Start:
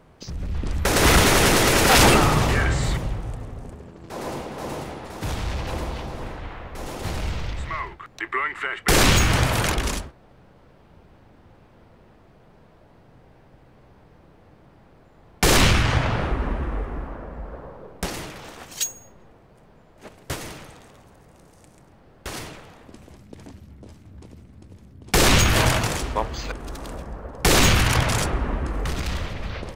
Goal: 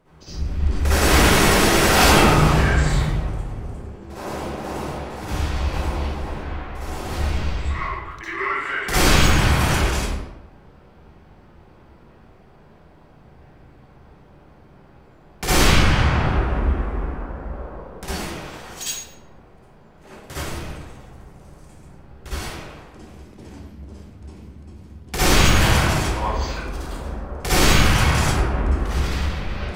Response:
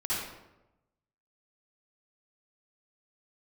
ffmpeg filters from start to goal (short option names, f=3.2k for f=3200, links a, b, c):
-filter_complex "[0:a]asettb=1/sr,asplit=3[a][b][c];[a]atrim=end=20.394[d];[b]atrim=start=20.39:end=22.33,asetpts=PTS-STARTPTS,afade=t=in:d=0.004:c=qsin,afade=t=out:st=1.936:d=0.004:c=qsin,lowshelf=f=140:g=9[e];[c]atrim=start=22.326[f];[d][e]acrossfade=d=0.004:c1=hsin:c2=qsin[g];[g][f]acrossfade=d=0.004:c1=qsin:c2=hsin,asplit=2[h][i];[i]asoftclip=type=tanh:threshold=-18dB,volume=-3.5dB[j];[h][j]amix=inputs=2:normalize=0[k];[1:a]atrim=start_sample=2205[l];[k][l]afir=irnorm=-1:irlink=0,volume=-8.5dB"